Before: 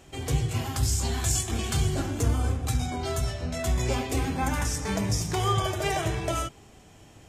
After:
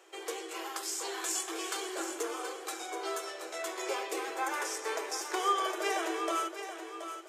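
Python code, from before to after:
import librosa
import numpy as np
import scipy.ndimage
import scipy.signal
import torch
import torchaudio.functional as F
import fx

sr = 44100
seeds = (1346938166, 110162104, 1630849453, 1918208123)

y = scipy.signal.sosfilt(scipy.signal.cheby1(6, 6, 320.0, 'highpass', fs=sr, output='sos'), x)
y = fx.echo_feedback(y, sr, ms=726, feedback_pct=37, wet_db=-9.5)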